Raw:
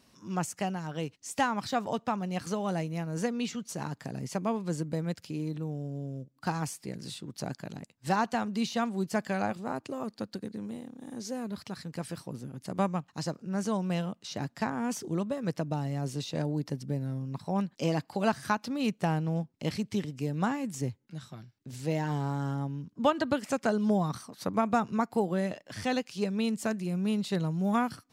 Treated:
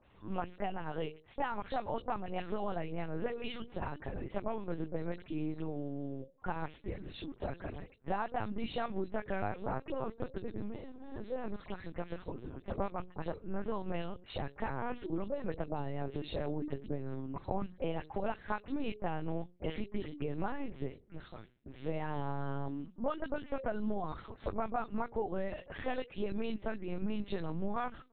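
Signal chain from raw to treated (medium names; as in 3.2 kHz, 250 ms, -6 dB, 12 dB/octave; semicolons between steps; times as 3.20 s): delay that grows with frequency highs late, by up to 102 ms; high-pass 190 Hz 24 dB/octave; hum notches 60/120/180/240/300/360/420/480/540 Hz; compression 6:1, threshold -34 dBFS, peak gain reduction 13 dB; distance through air 170 m; LPC vocoder at 8 kHz pitch kept; trim +3 dB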